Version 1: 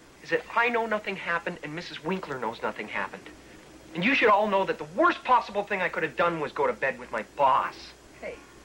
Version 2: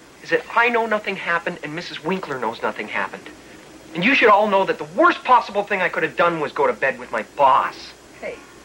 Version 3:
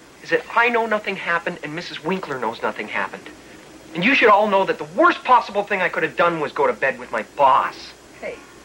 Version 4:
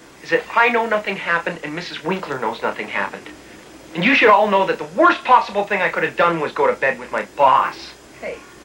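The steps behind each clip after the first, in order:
low shelf 75 Hz -10.5 dB; gain +7.5 dB
nothing audible
doubler 30 ms -8.5 dB; gain +1 dB

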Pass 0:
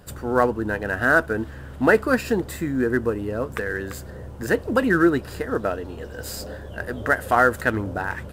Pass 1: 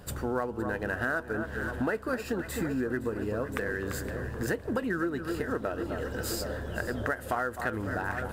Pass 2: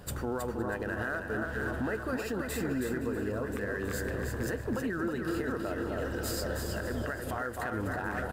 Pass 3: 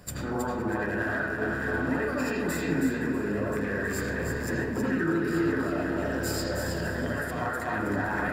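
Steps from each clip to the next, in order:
echo with dull and thin repeats by turns 0.257 s, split 1500 Hz, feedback 74%, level -11.5 dB; compressor 6:1, threshold -28 dBFS, peak gain reduction 15.5 dB
limiter -25 dBFS, peak gain reduction 9 dB; feedback echo 0.32 s, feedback 23%, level -5.5 dB
overloaded stage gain 25.5 dB; reverb RT60 0.50 s, pre-delay 73 ms, DRR -5 dB

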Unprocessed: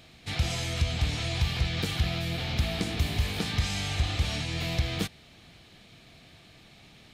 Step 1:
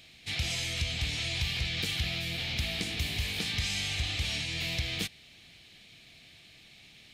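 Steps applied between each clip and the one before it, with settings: resonant high shelf 1700 Hz +7.5 dB, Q 1.5; gain -7 dB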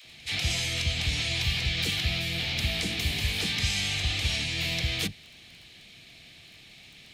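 crackle 11/s -44 dBFS; dispersion lows, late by 55 ms, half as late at 420 Hz; pre-echo 0.193 s -24 dB; gain +4 dB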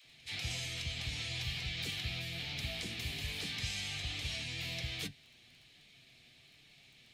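flange 1.2 Hz, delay 6.7 ms, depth 1.7 ms, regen +55%; gain -6.5 dB

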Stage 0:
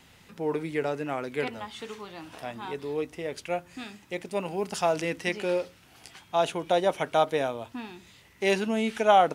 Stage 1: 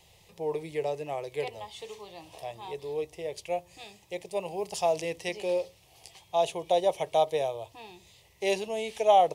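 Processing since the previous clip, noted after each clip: fixed phaser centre 600 Hz, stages 4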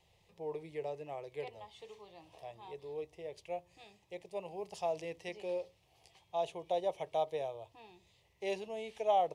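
high shelf 5400 Hz -11 dB; gain -9 dB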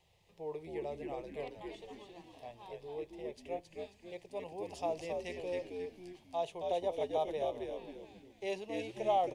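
frequency-shifting echo 0.27 s, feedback 37%, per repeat -89 Hz, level -3.5 dB; gain -1 dB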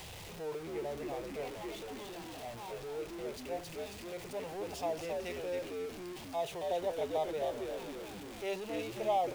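zero-crossing step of -40.5 dBFS; gain -1.5 dB

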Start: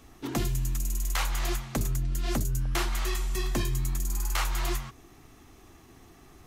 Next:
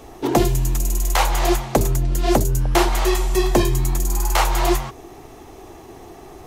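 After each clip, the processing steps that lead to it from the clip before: band shelf 570 Hz +9.5 dB; gain +9 dB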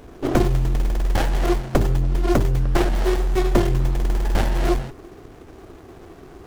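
running maximum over 33 samples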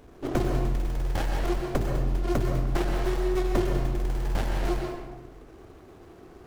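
reverb RT60 1.1 s, pre-delay 0.117 s, DRR 2 dB; gain -8.5 dB

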